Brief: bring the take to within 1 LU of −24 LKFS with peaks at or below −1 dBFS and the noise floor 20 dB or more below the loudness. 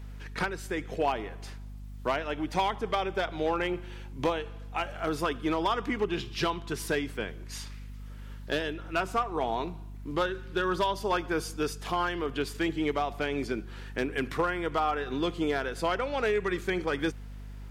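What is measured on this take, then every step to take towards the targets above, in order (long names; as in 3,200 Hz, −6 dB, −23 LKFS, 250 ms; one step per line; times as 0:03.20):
share of clipped samples 0.5%; peaks flattened at −19.5 dBFS; mains hum 50 Hz; hum harmonics up to 250 Hz; level of the hum −39 dBFS; integrated loudness −31.0 LKFS; sample peak −19.5 dBFS; target loudness −24.0 LKFS
→ clipped peaks rebuilt −19.5 dBFS
hum removal 50 Hz, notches 5
level +7 dB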